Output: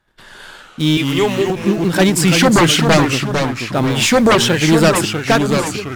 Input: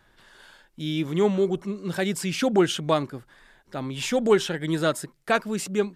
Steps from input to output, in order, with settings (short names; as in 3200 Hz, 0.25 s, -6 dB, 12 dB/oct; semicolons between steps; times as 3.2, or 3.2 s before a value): ending faded out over 1.06 s; in parallel at -8 dB: sample gate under -31 dBFS; 0.97–1.5 on the sum: HPF 1100 Hz 6 dB/oct; sine folder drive 12 dB, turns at -4.5 dBFS; gate -41 dBFS, range -19 dB; echoes that change speed 96 ms, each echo -2 st, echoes 3, each echo -6 dB; ending taper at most 140 dB/s; gain -2.5 dB